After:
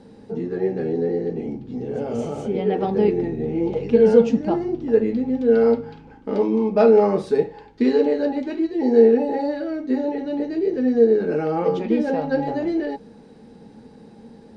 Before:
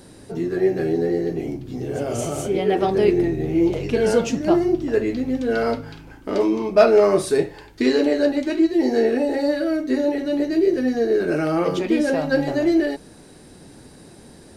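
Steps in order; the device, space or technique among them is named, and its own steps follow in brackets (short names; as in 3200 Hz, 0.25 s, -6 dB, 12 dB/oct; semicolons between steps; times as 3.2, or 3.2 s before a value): inside a cardboard box (LPF 4600 Hz 12 dB/oct; small resonant body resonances 220/460/820 Hz, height 15 dB, ringing for 60 ms); gain -7.5 dB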